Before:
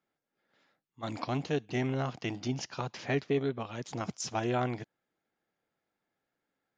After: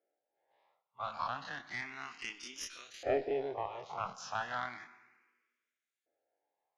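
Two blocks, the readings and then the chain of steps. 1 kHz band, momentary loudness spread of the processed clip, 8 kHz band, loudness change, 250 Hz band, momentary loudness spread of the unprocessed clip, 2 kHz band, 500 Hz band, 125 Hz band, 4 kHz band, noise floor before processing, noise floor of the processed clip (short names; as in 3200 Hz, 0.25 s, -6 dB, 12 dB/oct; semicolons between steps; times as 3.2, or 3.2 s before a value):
-1.0 dB, 9 LU, -5.5 dB, -5.0 dB, -15.5 dB, 8 LU, -1.0 dB, -4.0 dB, -20.0 dB, -4.0 dB, under -85 dBFS, under -85 dBFS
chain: spectral dilation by 60 ms; LFO band-pass saw up 0.33 Hz 590–6200 Hz; Schroeder reverb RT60 1.3 s, combs from 33 ms, DRR 13 dB; added harmonics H 2 -13 dB, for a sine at -23 dBFS; endless phaser +0.33 Hz; gain +5 dB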